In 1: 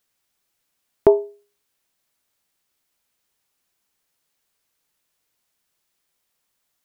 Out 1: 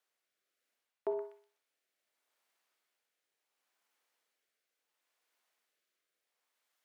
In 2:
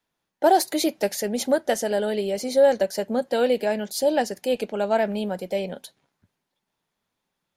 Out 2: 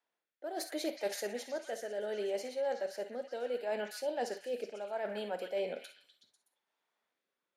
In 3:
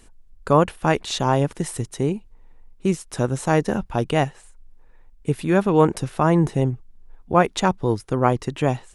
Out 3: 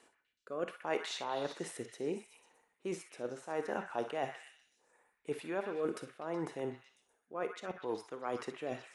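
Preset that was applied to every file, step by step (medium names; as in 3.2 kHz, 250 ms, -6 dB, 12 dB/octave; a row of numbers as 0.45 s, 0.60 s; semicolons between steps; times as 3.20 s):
high-pass 490 Hz 12 dB/octave; treble shelf 3.1 kHz -10.5 dB; reverse; compression 6:1, threshold -32 dBFS; reverse; rotary cabinet horn 0.7 Hz; on a send: repeats whose band climbs or falls 124 ms, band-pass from 1.7 kHz, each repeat 0.7 oct, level -4.5 dB; on the sum: gated-style reverb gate 80 ms rising, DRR 9.5 dB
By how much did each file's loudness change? -21.0 LU, -14.5 LU, -18.0 LU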